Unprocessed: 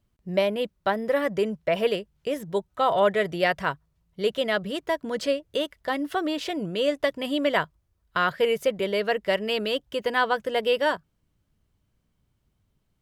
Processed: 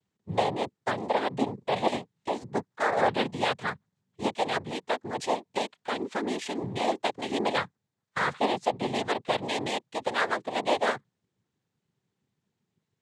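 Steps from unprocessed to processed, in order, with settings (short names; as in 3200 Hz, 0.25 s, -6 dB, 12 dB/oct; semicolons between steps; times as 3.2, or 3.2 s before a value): 1.53–1.95 flutter echo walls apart 6.7 m, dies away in 0.23 s; noise vocoder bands 6; gain -3.5 dB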